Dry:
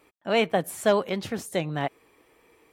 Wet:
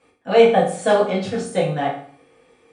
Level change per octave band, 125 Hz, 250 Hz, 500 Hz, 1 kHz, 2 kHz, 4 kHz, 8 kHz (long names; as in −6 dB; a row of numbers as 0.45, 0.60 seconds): +6.0, +6.0, +9.0, +8.5, +4.0, +3.0, +2.5 decibels